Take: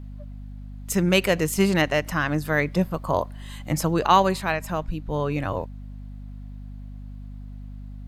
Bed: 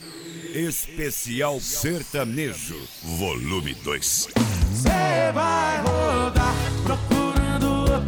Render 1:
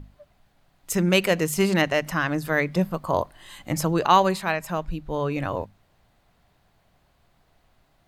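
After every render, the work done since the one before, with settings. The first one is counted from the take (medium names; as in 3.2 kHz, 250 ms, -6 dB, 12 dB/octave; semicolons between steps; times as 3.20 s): hum notches 50/100/150/200/250 Hz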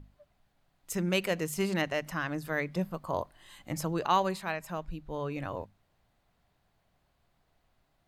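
trim -9 dB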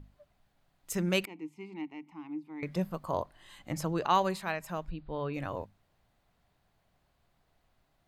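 1.25–2.63 s: vowel filter u; 3.14–4.15 s: treble shelf 8 kHz -6 dB; 4.90–5.34 s: brick-wall FIR low-pass 5 kHz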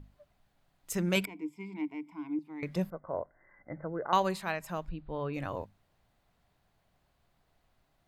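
1.15–2.39 s: rippled EQ curve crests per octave 1.7, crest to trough 11 dB; 2.90–4.13 s: rippled Chebyshev low-pass 2.1 kHz, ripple 9 dB; 4.89–5.33 s: distance through air 140 m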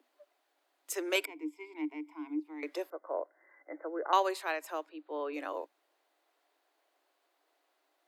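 steep high-pass 290 Hz 96 dB/octave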